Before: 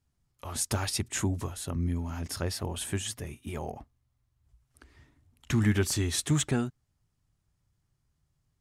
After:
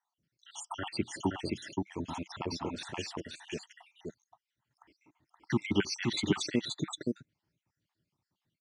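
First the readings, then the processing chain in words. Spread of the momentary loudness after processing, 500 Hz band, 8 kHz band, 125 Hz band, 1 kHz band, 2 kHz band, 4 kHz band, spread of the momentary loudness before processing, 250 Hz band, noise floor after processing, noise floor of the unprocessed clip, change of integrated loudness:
16 LU, −0.5 dB, −11.0 dB, −10.0 dB, 0.0 dB, −2.0 dB, −1.5 dB, 12 LU, −1.5 dB, below −85 dBFS, −77 dBFS, −4.5 dB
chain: time-frequency cells dropped at random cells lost 72%
loudspeaker in its box 160–6,200 Hz, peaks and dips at 190 Hz +4 dB, 320 Hz +7 dB, 920 Hz +10 dB, 2,000 Hz +4 dB, 3,000 Hz +6 dB
single-tap delay 524 ms −3 dB

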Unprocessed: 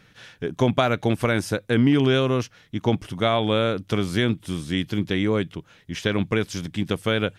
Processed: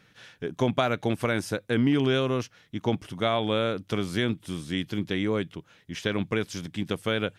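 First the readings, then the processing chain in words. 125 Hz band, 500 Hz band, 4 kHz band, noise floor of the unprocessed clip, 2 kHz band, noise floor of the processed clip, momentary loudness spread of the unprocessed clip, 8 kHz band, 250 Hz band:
−6.0 dB, −4.0 dB, −4.0 dB, −56 dBFS, −4.0 dB, −61 dBFS, 10 LU, −4.0 dB, −4.5 dB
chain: low-shelf EQ 64 Hz −9.5 dB
level −4 dB

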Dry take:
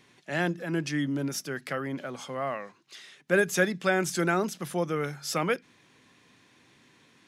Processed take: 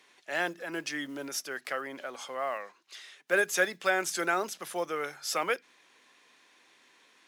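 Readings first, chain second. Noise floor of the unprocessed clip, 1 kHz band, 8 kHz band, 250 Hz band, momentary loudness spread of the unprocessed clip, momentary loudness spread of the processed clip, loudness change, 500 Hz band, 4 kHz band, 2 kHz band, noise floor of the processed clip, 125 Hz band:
−61 dBFS, −0.5 dB, 0.0 dB, −10.0 dB, 11 LU, 12 LU, −2.5 dB, −3.5 dB, 0.0 dB, 0.0 dB, −64 dBFS, −19.5 dB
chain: one scale factor per block 7 bits
high-pass filter 500 Hz 12 dB per octave
Opus 256 kbit/s 48,000 Hz

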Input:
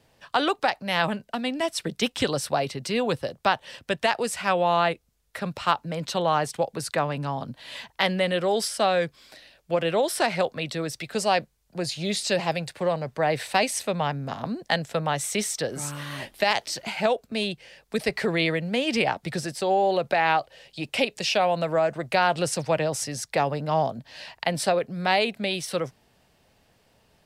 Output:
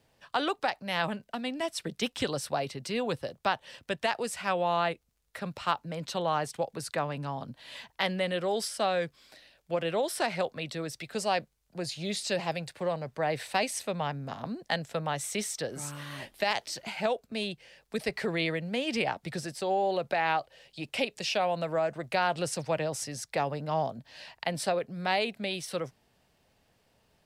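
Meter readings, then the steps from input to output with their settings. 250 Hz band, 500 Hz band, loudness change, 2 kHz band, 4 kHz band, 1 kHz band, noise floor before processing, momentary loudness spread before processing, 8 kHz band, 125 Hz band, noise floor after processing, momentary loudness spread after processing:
−6.0 dB, −6.0 dB, −6.0 dB, −6.0 dB, −6.0 dB, −6.0 dB, −65 dBFS, 9 LU, −6.0 dB, −6.0 dB, −71 dBFS, 9 LU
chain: surface crackle 47 per second −56 dBFS
level −6 dB

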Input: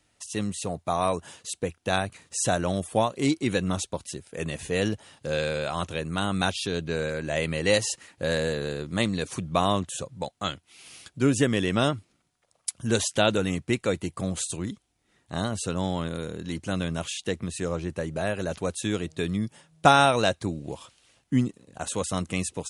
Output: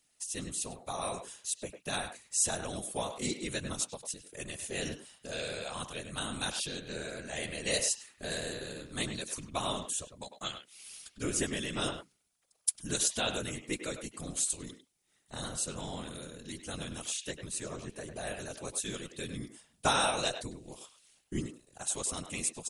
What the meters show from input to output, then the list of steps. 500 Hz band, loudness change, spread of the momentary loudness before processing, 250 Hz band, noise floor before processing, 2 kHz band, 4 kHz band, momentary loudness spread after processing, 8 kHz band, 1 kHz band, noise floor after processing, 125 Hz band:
−12.0 dB, −7.5 dB, 11 LU, −13.0 dB, −71 dBFS, −8.5 dB, −4.5 dB, 13 LU, +0.5 dB, −11.0 dB, −73 dBFS, −13.5 dB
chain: random phases in short frames
first-order pre-emphasis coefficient 0.8
far-end echo of a speakerphone 100 ms, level −8 dB
level +1 dB

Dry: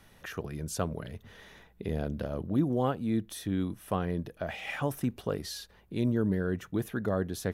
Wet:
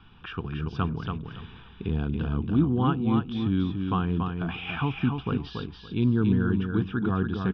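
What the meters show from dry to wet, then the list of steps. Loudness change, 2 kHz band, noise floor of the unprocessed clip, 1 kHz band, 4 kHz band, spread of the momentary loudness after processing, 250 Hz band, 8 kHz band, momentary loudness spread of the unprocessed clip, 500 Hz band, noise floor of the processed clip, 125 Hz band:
+5.5 dB, +4.0 dB, −60 dBFS, +5.5 dB, +4.0 dB, 13 LU, +6.0 dB, below −25 dB, 12 LU, −1.0 dB, −48 dBFS, +7.5 dB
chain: Butterworth low-pass 4,600 Hz 72 dB per octave
phaser with its sweep stopped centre 2,900 Hz, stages 8
repeating echo 283 ms, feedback 21%, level −5 dB
level +7 dB

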